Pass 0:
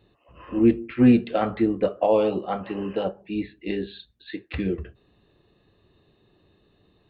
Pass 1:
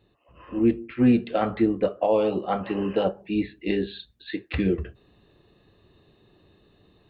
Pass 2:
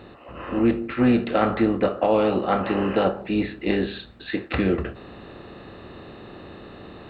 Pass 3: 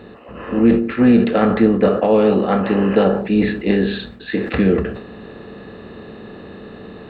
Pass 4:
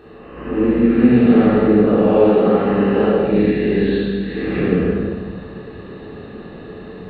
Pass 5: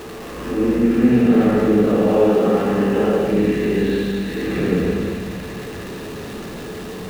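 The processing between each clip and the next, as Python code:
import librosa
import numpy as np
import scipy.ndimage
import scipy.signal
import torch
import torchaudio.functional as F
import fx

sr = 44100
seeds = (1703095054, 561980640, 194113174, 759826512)

y1 = fx.rider(x, sr, range_db=3, speed_s=0.5)
y2 = fx.bin_compress(y1, sr, power=0.6)
y2 = fx.peak_eq(y2, sr, hz=1400.0, db=7.0, octaves=1.1)
y2 = F.gain(torch.from_numpy(y2), -1.5).numpy()
y3 = fx.small_body(y2, sr, hz=(210.0, 440.0, 1700.0), ring_ms=45, db=9)
y3 = fx.sustainer(y3, sr, db_per_s=75.0)
y3 = F.gain(torch.from_numpy(y3), 1.5).numpy()
y4 = fx.spec_blur(y3, sr, span_ms=214.0)
y4 = fx.room_shoebox(y4, sr, seeds[0], volume_m3=860.0, walls='mixed', distance_m=3.6)
y4 = F.gain(torch.from_numpy(y4), -6.0).numpy()
y5 = y4 + 0.5 * 10.0 ** (-27.0 / 20.0) * np.sign(y4)
y5 = fx.echo_wet_highpass(y5, sr, ms=235, feedback_pct=82, hz=2400.0, wet_db=-6)
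y5 = F.gain(torch.from_numpy(y5), -3.0).numpy()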